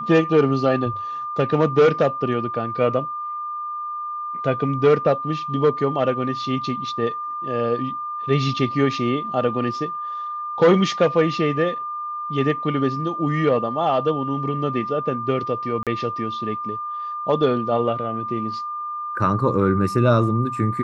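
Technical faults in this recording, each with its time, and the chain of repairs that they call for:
tone 1200 Hz -26 dBFS
15.83–15.87 gap 37 ms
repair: notch 1200 Hz, Q 30; interpolate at 15.83, 37 ms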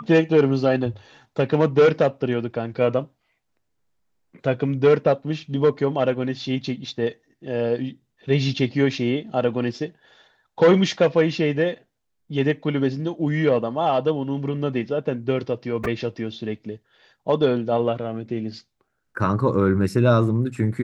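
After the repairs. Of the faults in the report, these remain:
none

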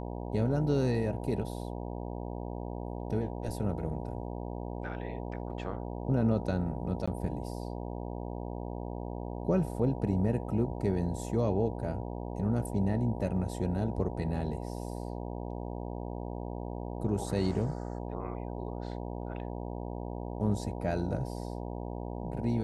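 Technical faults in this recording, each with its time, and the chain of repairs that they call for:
buzz 60 Hz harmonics 16 -38 dBFS
7.06–7.08 gap 15 ms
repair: de-hum 60 Hz, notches 16; interpolate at 7.06, 15 ms

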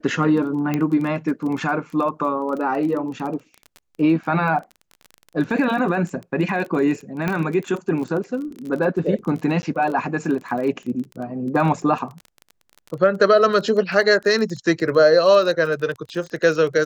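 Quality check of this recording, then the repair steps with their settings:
crackle 22/s -28 dBFS
0.74 pop -10 dBFS
7.28 pop -10 dBFS
9.62–9.63 gap 10 ms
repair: de-click; interpolate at 9.62, 10 ms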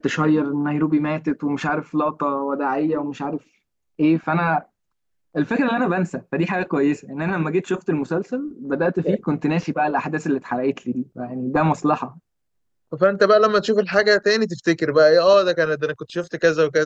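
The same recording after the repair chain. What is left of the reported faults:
none

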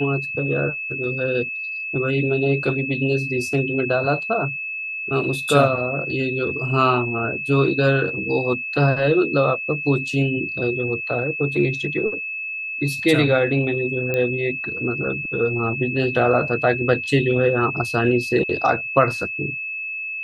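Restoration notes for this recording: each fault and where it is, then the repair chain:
tone 2600 Hz -26 dBFS
14.14 pop -11 dBFS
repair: de-click; notch 2600 Hz, Q 30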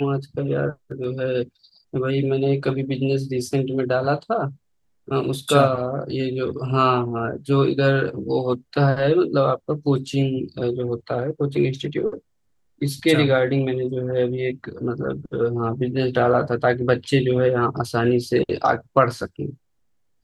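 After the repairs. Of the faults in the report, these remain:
none

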